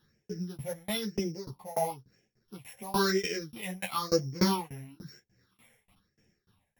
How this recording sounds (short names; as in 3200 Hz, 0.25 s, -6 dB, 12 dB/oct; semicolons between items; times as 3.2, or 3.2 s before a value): a buzz of ramps at a fixed pitch in blocks of 8 samples; phasing stages 6, 1 Hz, lowest notch 320–1100 Hz; tremolo saw down 3.4 Hz, depth 100%; a shimmering, thickened sound